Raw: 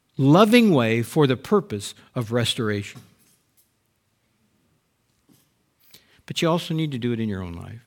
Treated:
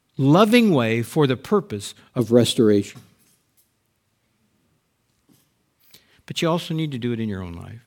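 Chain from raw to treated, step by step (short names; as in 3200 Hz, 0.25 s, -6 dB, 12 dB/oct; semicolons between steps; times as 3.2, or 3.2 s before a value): 2.19–2.9 EQ curve 100 Hz 0 dB, 330 Hz +13 dB, 1800 Hz -8 dB, 4800 Hz +4 dB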